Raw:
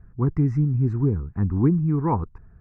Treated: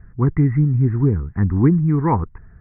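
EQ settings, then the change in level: synth low-pass 2000 Hz, resonance Q 4.9; air absorption 470 m; +5.0 dB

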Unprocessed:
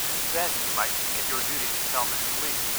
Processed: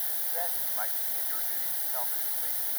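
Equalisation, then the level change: rippled Chebyshev high-pass 200 Hz, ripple 3 dB; resonant high shelf 6700 Hz +9.5 dB, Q 1.5; fixed phaser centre 1700 Hz, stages 8; -6.5 dB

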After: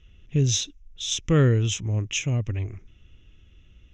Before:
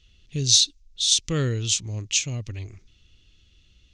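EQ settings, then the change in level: running mean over 10 samples; +6.0 dB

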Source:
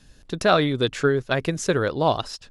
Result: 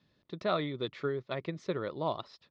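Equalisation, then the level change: speaker cabinet 170–3700 Hz, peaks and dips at 260 Hz -7 dB, 460 Hz -5 dB, 770 Hz -7 dB, 1500 Hz -5 dB, 2800 Hz -10 dB; notch 1600 Hz, Q 6.3; -8.5 dB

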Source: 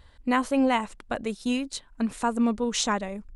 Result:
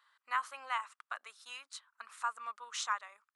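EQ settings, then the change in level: ladder high-pass 1100 Hz, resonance 65%; -1.0 dB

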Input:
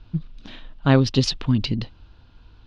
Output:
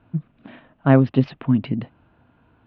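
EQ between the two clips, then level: speaker cabinet 140–2300 Hz, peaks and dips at 140 Hz +5 dB, 250 Hz +4 dB, 660 Hz +6 dB; 0.0 dB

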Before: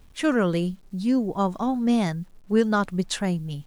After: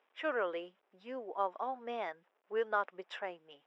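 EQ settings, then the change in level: polynomial smoothing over 25 samples; HPF 470 Hz 24 dB/oct; air absorption 110 m; -7.0 dB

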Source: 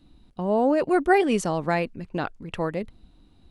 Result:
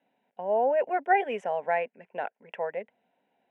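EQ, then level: HPF 300 Hz 24 dB/oct; LPF 2300 Hz 12 dB/oct; fixed phaser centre 1200 Hz, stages 6; 0.0 dB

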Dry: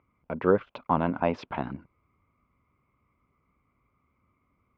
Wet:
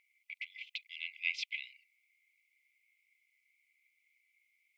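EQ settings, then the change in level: brick-wall FIR high-pass 2000 Hz; +8.5 dB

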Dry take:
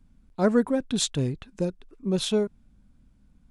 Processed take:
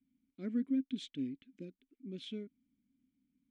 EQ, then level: vowel filter i; -4.0 dB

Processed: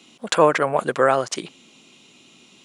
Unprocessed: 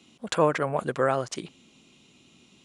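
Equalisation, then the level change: HPF 330 Hz 6 dB/oct; +8.0 dB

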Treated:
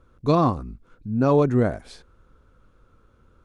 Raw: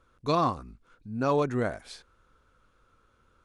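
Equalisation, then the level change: tilt shelf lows +6 dB, about 680 Hz; +5.0 dB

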